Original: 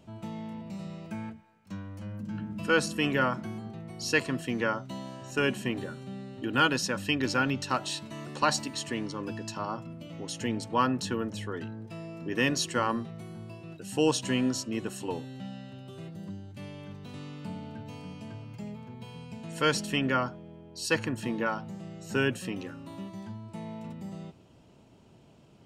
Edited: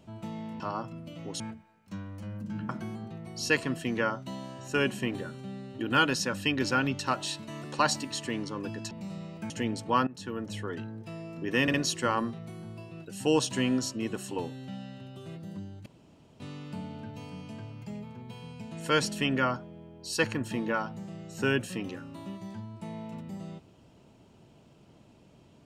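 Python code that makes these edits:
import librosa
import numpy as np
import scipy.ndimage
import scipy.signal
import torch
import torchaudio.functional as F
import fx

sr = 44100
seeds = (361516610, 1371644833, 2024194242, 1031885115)

y = fx.edit(x, sr, fx.swap(start_s=0.6, length_s=0.59, other_s=9.54, other_length_s=0.8),
    fx.cut(start_s=2.48, length_s=0.84),
    fx.fade_in_from(start_s=10.91, length_s=0.49, floor_db=-19.0),
    fx.stutter(start_s=12.46, slice_s=0.06, count=3),
    fx.room_tone_fill(start_s=16.58, length_s=0.54), tone=tone)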